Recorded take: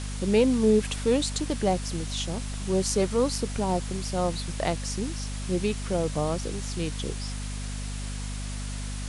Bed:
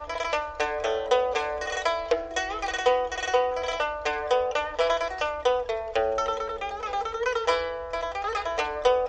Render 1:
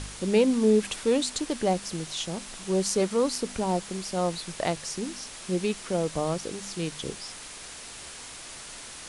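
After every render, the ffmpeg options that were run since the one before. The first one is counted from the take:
-af "bandreject=f=50:t=h:w=4,bandreject=f=100:t=h:w=4,bandreject=f=150:t=h:w=4,bandreject=f=200:t=h:w=4,bandreject=f=250:t=h:w=4"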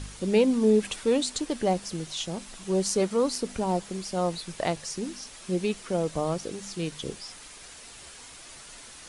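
-af "afftdn=nr=6:nf=-43"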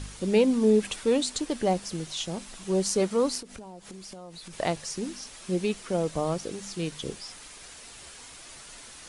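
-filter_complex "[0:a]asplit=3[s0][s1][s2];[s0]afade=t=out:st=3.4:d=0.02[s3];[s1]acompressor=threshold=0.0112:ratio=12:attack=3.2:release=140:knee=1:detection=peak,afade=t=in:st=3.4:d=0.02,afade=t=out:st=4.52:d=0.02[s4];[s2]afade=t=in:st=4.52:d=0.02[s5];[s3][s4][s5]amix=inputs=3:normalize=0"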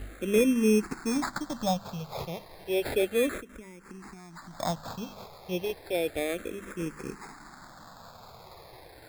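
-filter_complex "[0:a]acrusher=samples=15:mix=1:aa=0.000001,asplit=2[s0][s1];[s1]afreqshift=-0.32[s2];[s0][s2]amix=inputs=2:normalize=1"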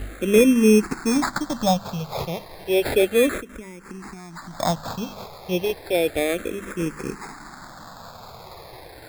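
-af "volume=2.51"

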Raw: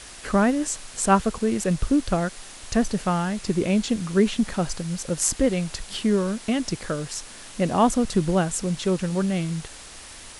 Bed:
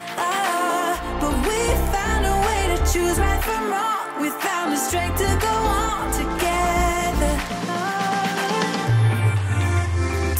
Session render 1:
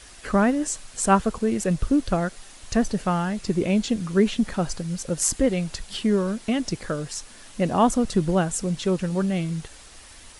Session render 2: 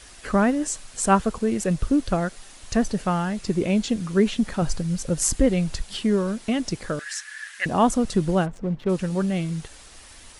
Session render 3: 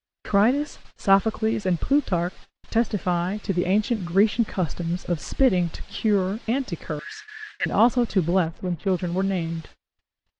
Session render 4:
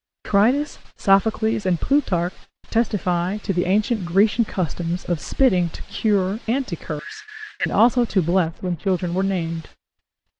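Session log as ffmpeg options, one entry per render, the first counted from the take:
-af "afftdn=nr=6:nf=-42"
-filter_complex "[0:a]asettb=1/sr,asplit=3[s0][s1][s2];[s0]atrim=end=4.624[s3];[s1]atrim=start=4.62:end=5.82,asetpts=PTS-STARTPTS,afade=t=in:d=0.004:c=qsin,afade=t=out:st=1.196:d=0.004:c=qsin,lowshelf=f=150:g=8.5[s4];[s2]atrim=start=5.816[s5];[s3][s4]acrossfade=d=0.004:c1=hsin:c2=qsin[s6];[s6][s5]acrossfade=d=0.004:c1=qsin:c2=hsin,asettb=1/sr,asplit=3[s7][s8][s9];[s7]atrim=end=6.994[s10];[s8]atrim=start=6.99:end=7.66,asetpts=PTS-STARTPTS,afade=t=in:d=0.004:c=qsin,afade=t=out:st=0.666:d=0.004:c=qsin,highpass=f=1700:t=q:w=10[s11];[s9]atrim=start=7.656[s12];[s10][s11]acrossfade=d=0.004:c1=hsin:c2=qsin[s13];[s13][s12]acrossfade=d=0.004:c1=qsin:c2=hsin,asplit=3[s14][s15][s16];[s14]afade=t=out:st=8.45:d=0.02[s17];[s15]adynamicsmooth=sensitivity=2:basefreq=830,afade=t=in:st=8.45:d=0.02,afade=t=out:st=8.88:d=0.02[s18];[s16]afade=t=in:st=8.88:d=0.02[s19];[s17][s18][s19]amix=inputs=3:normalize=0"
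-af "lowpass=f=4700:w=0.5412,lowpass=f=4700:w=1.3066,agate=range=0.00708:threshold=0.01:ratio=16:detection=peak"
-af "volume=1.33"

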